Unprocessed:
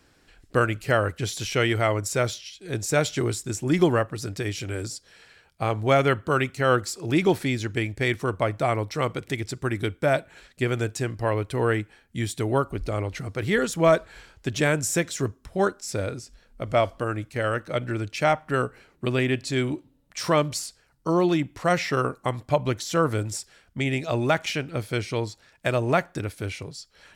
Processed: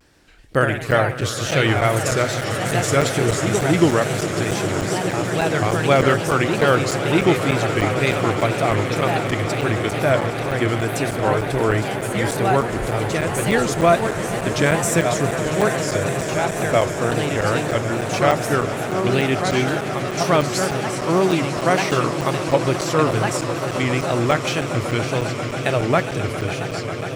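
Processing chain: echoes that change speed 0.129 s, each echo +2 st, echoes 3, each echo -6 dB; on a send: swelling echo 0.136 s, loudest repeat 8, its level -15 dB; on the sum: wow and flutter 110 cents; crackling interface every 0.30 s, samples 256, zero, from 0.91; gain +3.5 dB

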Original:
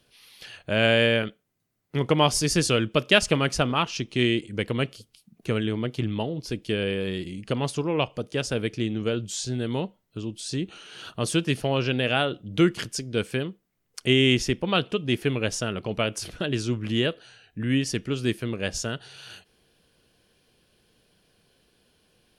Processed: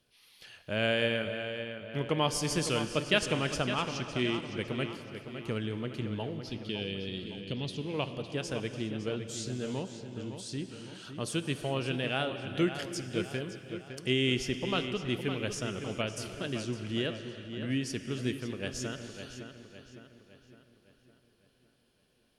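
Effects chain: 6.43–7.94 EQ curve 250 Hz 0 dB, 1300 Hz -12 dB, 3600 Hz +7 dB, 7800 Hz -8 dB; darkening echo 0.559 s, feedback 49%, low-pass 4900 Hz, level -9 dB; non-linear reverb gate 0.43 s flat, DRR 10 dB; gain -8.5 dB

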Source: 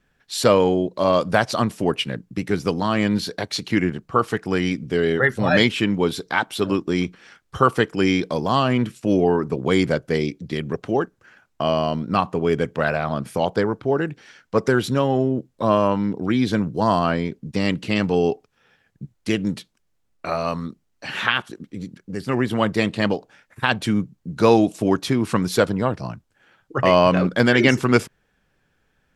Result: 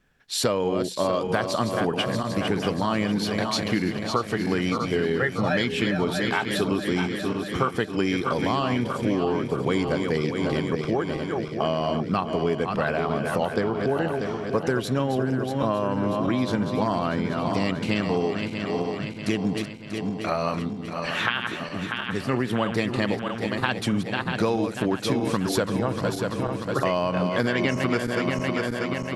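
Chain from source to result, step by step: regenerating reverse delay 0.319 s, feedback 74%, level -8 dB; compressor, threshold -20 dBFS, peak gain reduction 11 dB

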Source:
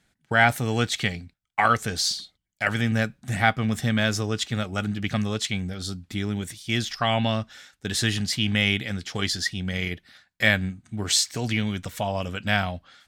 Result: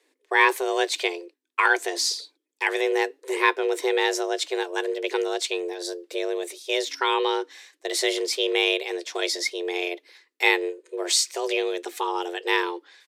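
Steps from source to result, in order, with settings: downsampling 32000 Hz; frequency shift +260 Hz

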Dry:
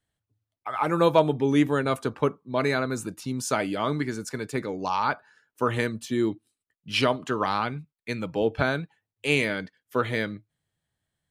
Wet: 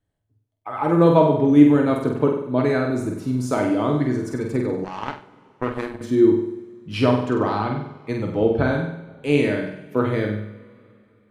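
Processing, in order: tilt shelf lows +7.5 dB, about 1100 Hz; flutter echo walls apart 8.2 m, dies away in 0.67 s; 4.84–6.01 power-law curve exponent 2; two-slope reverb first 0.24 s, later 3.1 s, from -22 dB, DRR 7.5 dB; gain -1 dB

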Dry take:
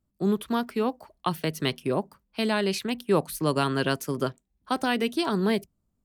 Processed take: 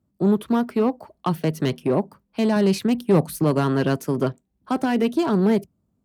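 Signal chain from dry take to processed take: one-sided clip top -23 dBFS; 2.56–3.44 tone controls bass +5 dB, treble +4 dB; in parallel at -5 dB: soft clip -26.5 dBFS, distortion -9 dB; on the sum: HPF 89 Hz 12 dB/oct; tilt shelf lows +5.5 dB, about 1200 Hz

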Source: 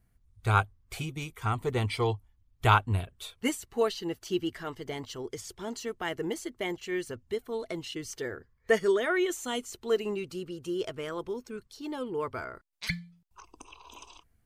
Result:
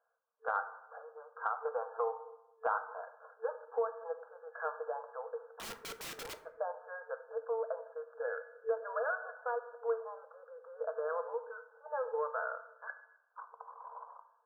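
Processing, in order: FFT band-pass 450–1700 Hz; 2.78–3.98 dynamic EQ 1100 Hz, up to +4 dB, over -44 dBFS, Q 1; compressor 5:1, threshold -36 dBFS, peak gain reduction 16.5 dB; 5.46–6.36 wrapped overs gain 43 dB; reverb RT60 0.95 s, pre-delay 8 ms, DRR 9.5 dB; gain +4 dB

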